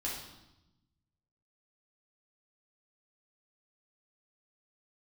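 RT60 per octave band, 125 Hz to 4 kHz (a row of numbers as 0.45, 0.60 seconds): 1.7, 1.4, 0.95, 0.90, 0.80, 0.90 seconds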